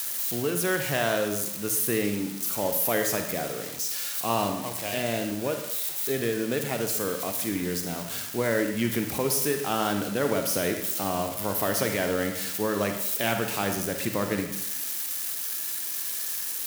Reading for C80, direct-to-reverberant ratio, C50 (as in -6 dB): 9.0 dB, 5.0 dB, 6.5 dB